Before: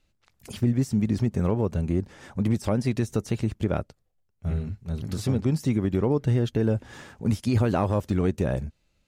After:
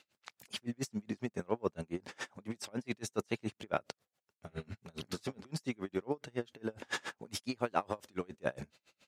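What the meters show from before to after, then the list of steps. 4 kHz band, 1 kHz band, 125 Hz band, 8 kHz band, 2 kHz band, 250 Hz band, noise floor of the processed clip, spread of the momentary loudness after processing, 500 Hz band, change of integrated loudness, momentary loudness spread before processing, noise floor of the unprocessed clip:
-2.5 dB, -5.5 dB, -21.5 dB, -4.5 dB, -2.5 dB, -15.0 dB, under -85 dBFS, 11 LU, -10.0 dB, -13.5 dB, 9 LU, -71 dBFS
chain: reverse; compression 12:1, threshold -33 dBFS, peak gain reduction 15.5 dB; reverse; frequency weighting A; logarithmic tremolo 7.2 Hz, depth 33 dB; trim +13 dB

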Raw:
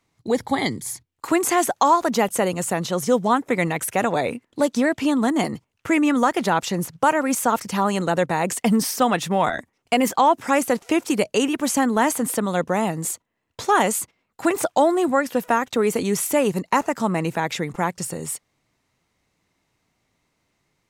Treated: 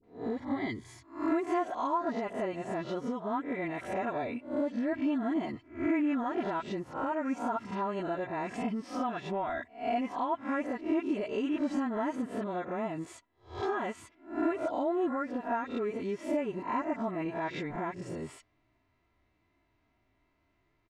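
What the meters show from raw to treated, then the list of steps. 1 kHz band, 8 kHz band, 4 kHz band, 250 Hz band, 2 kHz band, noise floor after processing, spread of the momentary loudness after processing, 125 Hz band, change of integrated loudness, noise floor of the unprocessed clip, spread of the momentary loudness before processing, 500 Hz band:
-13.0 dB, under -25 dB, -19.0 dB, -10.0 dB, -14.5 dB, -74 dBFS, 7 LU, -14.5 dB, -12.0 dB, -73 dBFS, 8 LU, -12.0 dB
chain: reverse spectral sustain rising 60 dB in 0.35 s; low-pass 2.6 kHz 12 dB/octave; phase dispersion highs, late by 40 ms, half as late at 760 Hz; harmonic-percussive split percussive -9 dB; bass shelf 100 Hz +6 dB; compression 6:1, threshold -29 dBFS, peak gain reduction 16 dB; comb 3 ms, depth 60%; trim -2 dB

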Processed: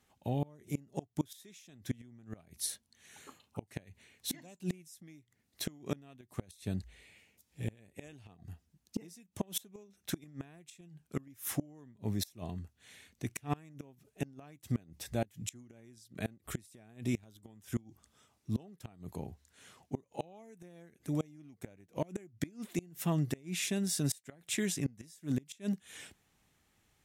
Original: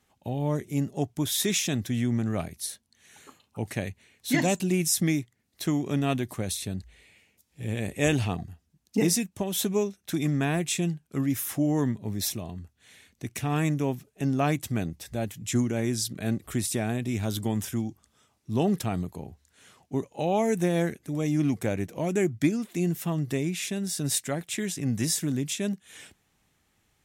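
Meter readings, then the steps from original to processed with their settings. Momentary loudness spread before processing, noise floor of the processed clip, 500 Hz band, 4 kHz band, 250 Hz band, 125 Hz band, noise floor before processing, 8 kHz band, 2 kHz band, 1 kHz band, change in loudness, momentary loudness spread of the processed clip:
10 LU, -77 dBFS, -13.5 dB, -11.0 dB, -12.0 dB, -10.5 dB, -71 dBFS, -11.0 dB, -13.0 dB, -13.0 dB, -11.0 dB, 20 LU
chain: inverted gate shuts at -19 dBFS, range -27 dB; trim -2.5 dB

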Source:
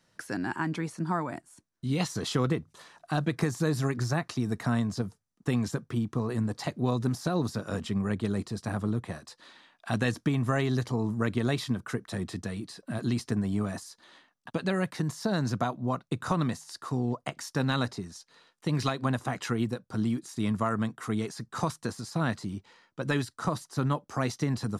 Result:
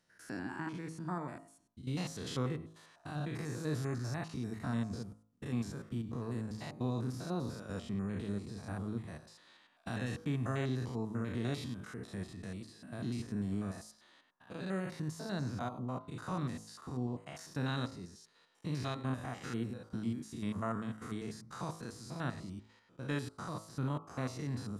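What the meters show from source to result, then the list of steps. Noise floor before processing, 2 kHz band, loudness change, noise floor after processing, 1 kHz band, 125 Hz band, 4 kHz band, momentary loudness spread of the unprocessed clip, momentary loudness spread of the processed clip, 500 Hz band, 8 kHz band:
-74 dBFS, -10.0 dB, -9.0 dB, -68 dBFS, -10.0 dB, -8.0 dB, -9.5 dB, 9 LU, 10 LU, -9.5 dB, -9.5 dB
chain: spectrogram pixelated in time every 100 ms; de-hum 53.85 Hz, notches 26; trim -6.5 dB

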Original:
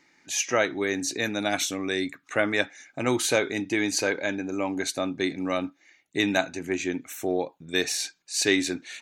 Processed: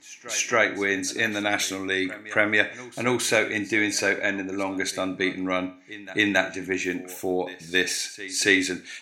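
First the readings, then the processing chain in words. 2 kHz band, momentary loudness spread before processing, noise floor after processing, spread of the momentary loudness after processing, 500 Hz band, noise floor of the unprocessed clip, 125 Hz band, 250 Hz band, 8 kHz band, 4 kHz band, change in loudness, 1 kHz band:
+6.0 dB, 7 LU, -46 dBFS, 8 LU, +0.5 dB, -66 dBFS, +0.5 dB, +0.5 dB, +0.5 dB, +1.0 dB, +2.5 dB, +1.5 dB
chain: dynamic bell 1.9 kHz, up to +7 dB, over -42 dBFS, Q 1.6; pre-echo 275 ms -18 dB; Schroeder reverb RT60 0.41 s, combs from 29 ms, DRR 13 dB

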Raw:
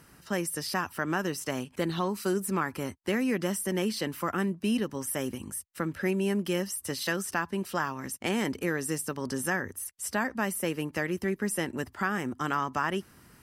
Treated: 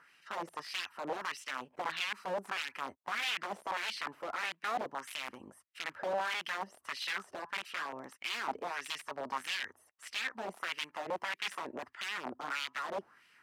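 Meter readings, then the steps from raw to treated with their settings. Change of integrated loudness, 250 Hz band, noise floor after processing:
-7.0 dB, -21.0 dB, -70 dBFS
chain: integer overflow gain 25.5 dB; LFO band-pass sine 1.6 Hz 580–2800 Hz; trim +3.5 dB

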